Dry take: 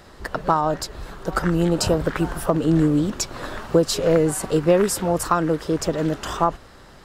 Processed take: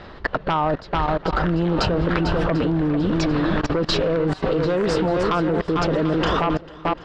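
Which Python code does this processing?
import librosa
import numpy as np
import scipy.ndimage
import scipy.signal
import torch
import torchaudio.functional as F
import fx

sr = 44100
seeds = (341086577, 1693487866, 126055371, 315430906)

p1 = scipy.signal.sosfilt(scipy.signal.butter(4, 4000.0, 'lowpass', fs=sr, output='sos'), x)
p2 = fx.fold_sine(p1, sr, drive_db=6, ceiling_db=-4.5)
p3 = p2 + fx.echo_swing(p2, sr, ms=742, ratio=1.5, feedback_pct=31, wet_db=-8, dry=0)
y = fx.level_steps(p3, sr, step_db=20)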